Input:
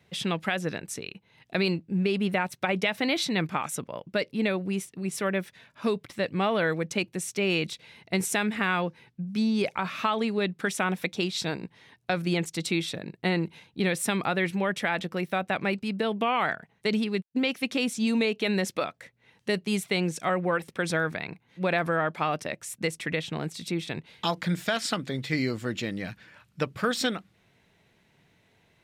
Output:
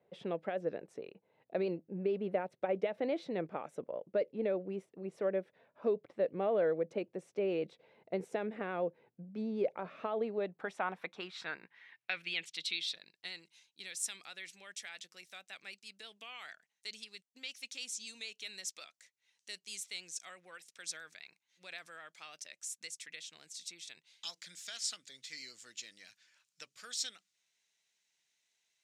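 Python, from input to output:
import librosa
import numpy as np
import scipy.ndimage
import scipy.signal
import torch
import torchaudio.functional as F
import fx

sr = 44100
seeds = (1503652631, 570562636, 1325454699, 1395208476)

y = fx.dynamic_eq(x, sr, hz=970.0, q=1.7, threshold_db=-43.0, ratio=4.0, max_db=-5)
y = fx.filter_sweep_bandpass(y, sr, from_hz=530.0, to_hz=6600.0, start_s=10.16, end_s=13.46, q=2.2)
y = fx.vibrato(y, sr, rate_hz=9.1, depth_cents=30.0)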